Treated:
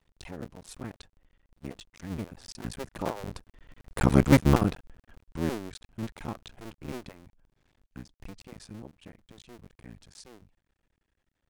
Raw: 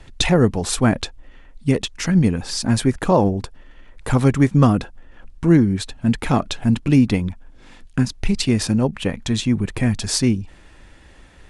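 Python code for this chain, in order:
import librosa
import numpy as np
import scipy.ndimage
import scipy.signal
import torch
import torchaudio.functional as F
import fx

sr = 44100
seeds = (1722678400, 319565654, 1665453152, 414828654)

y = fx.cycle_switch(x, sr, every=2, mode='muted')
y = fx.doppler_pass(y, sr, speed_mps=8, closest_m=2.5, pass_at_s=4.24)
y = y * librosa.db_to_amplitude(-1.5)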